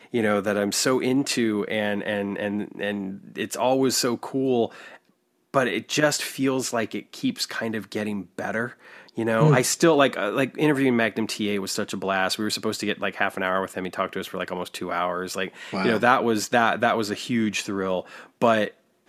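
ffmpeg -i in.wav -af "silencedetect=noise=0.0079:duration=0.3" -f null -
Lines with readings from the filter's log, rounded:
silence_start: 4.97
silence_end: 5.54 | silence_duration: 0.57
silence_start: 18.71
silence_end: 19.08 | silence_duration: 0.38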